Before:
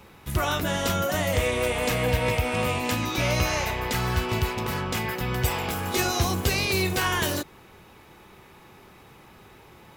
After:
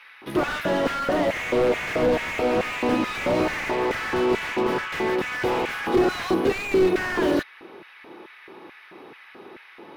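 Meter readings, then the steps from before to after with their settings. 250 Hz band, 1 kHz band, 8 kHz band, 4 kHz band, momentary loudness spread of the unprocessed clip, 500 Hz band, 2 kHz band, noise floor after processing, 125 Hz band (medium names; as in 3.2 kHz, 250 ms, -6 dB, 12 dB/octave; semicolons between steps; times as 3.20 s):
+6.0 dB, +1.5 dB, -10.5 dB, -4.5 dB, 4 LU, +6.0 dB, +1.5 dB, -49 dBFS, -9.5 dB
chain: LFO high-pass square 2.3 Hz 320–1800 Hz; boxcar filter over 6 samples; slew-rate limiter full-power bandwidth 40 Hz; trim +5.5 dB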